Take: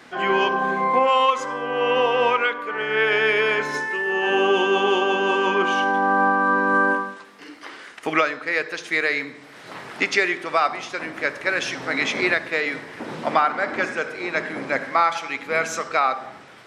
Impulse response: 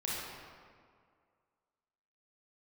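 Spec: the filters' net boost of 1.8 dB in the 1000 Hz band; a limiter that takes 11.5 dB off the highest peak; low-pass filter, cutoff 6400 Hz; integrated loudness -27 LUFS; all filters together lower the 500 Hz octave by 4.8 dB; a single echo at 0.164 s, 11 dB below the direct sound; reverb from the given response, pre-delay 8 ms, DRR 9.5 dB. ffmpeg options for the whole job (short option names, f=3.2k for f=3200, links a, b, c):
-filter_complex "[0:a]lowpass=6.4k,equalizer=f=500:t=o:g=-7,equalizer=f=1k:t=o:g=4,alimiter=limit=-16dB:level=0:latency=1,aecho=1:1:164:0.282,asplit=2[a][b];[1:a]atrim=start_sample=2205,adelay=8[c];[b][c]afir=irnorm=-1:irlink=0,volume=-14dB[d];[a][d]amix=inputs=2:normalize=0,volume=-2dB"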